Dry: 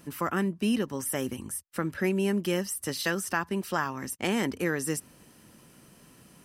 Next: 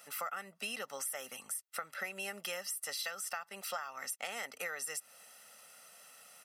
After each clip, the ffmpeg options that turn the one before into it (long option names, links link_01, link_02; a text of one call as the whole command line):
ffmpeg -i in.wav -af "highpass=780,aecho=1:1:1.5:0.8,acompressor=threshold=-36dB:ratio=12" out.wav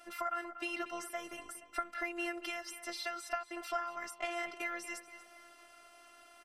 ffmpeg -i in.wav -filter_complex "[0:a]aemphasis=mode=reproduction:type=riaa,afftfilt=real='hypot(re,im)*cos(PI*b)':imag='0':win_size=512:overlap=0.75,asplit=2[link_01][link_02];[link_02]adelay=237,lowpass=frequency=4900:poles=1,volume=-12dB,asplit=2[link_03][link_04];[link_04]adelay=237,lowpass=frequency=4900:poles=1,volume=0.48,asplit=2[link_05][link_06];[link_06]adelay=237,lowpass=frequency=4900:poles=1,volume=0.48,asplit=2[link_07][link_08];[link_08]adelay=237,lowpass=frequency=4900:poles=1,volume=0.48,asplit=2[link_09][link_10];[link_10]adelay=237,lowpass=frequency=4900:poles=1,volume=0.48[link_11];[link_01][link_03][link_05][link_07][link_09][link_11]amix=inputs=6:normalize=0,volume=7.5dB" out.wav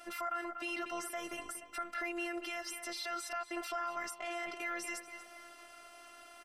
ffmpeg -i in.wav -af "alimiter=level_in=7.5dB:limit=-24dB:level=0:latency=1:release=34,volume=-7.5dB,volume=4dB" out.wav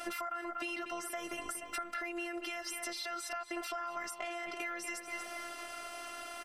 ffmpeg -i in.wav -af "acompressor=threshold=-46dB:ratio=12,volume=10.5dB" out.wav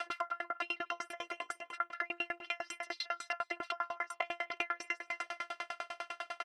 ffmpeg -i in.wav -af "highpass=600,lowpass=3900,aecho=1:1:190:0.119,aeval=exprs='val(0)*pow(10,-37*if(lt(mod(10*n/s,1),2*abs(10)/1000),1-mod(10*n/s,1)/(2*abs(10)/1000),(mod(10*n/s,1)-2*abs(10)/1000)/(1-2*abs(10)/1000))/20)':channel_layout=same,volume=11.5dB" out.wav